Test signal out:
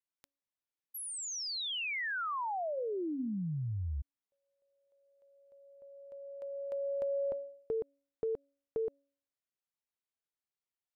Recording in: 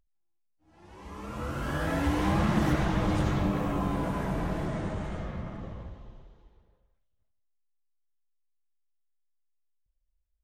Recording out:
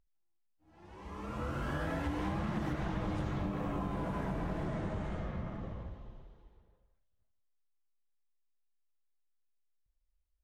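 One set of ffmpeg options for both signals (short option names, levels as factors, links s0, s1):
-af "highshelf=f=5300:g=-8,bandreject=f=280.3:t=h:w=4,bandreject=f=560.6:t=h:w=4,acompressor=threshold=0.0316:ratio=6,volume=0.794"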